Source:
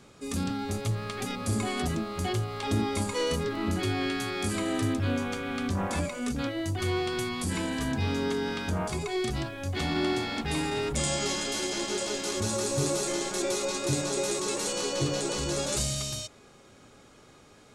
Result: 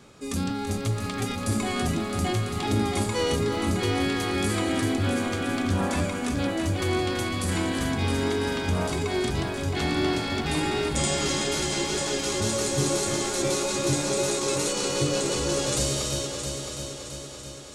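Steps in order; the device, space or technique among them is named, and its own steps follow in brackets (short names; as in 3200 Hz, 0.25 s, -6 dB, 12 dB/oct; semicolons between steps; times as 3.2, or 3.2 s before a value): multi-head tape echo (multi-head echo 0.333 s, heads first and second, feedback 60%, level -10 dB; wow and flutter 14 cents); gain +2.5 dB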